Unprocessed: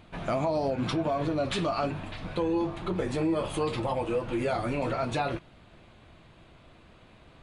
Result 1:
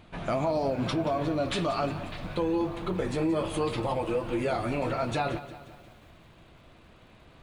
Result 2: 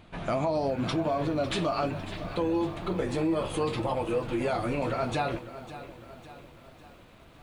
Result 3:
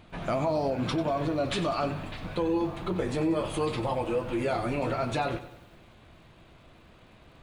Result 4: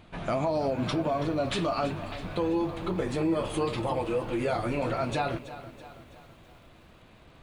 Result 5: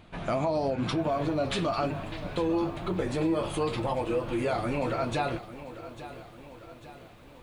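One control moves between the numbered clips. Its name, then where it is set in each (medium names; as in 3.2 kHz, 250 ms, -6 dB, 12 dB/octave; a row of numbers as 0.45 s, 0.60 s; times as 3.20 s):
bit-crushed delay, time: 177 ms, 552 ms, 94 ms, 328 ms, 847 ms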